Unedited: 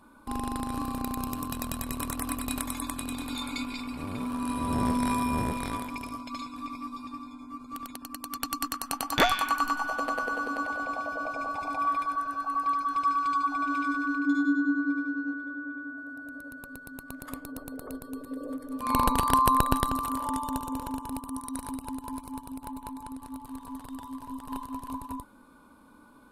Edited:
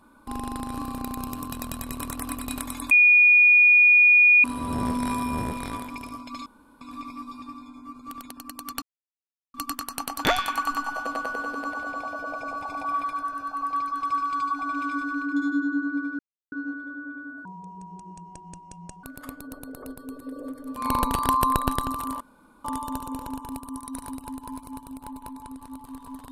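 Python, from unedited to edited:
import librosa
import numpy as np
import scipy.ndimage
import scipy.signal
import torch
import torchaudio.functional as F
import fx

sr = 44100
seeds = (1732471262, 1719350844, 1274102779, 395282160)

y = fx.edit(x, sr, fx.bleep(start_s=2.91, length_s=1.53, hz=2450.0, db=-12.0),
    fx.insert_room_tone(at_s=6.46, length_s=0.35),
    fx.insert_silence(at_s=8.47, length_s=0.72),
    fx.insert_silence(at_s=15.12, length_s=0.33),
    fx.speed_span(start_s=16.05, length_s=1.03, speed=0.65),
    fx.insert_room_tone(at_s=20.25, length_s=0.44), tone=tone)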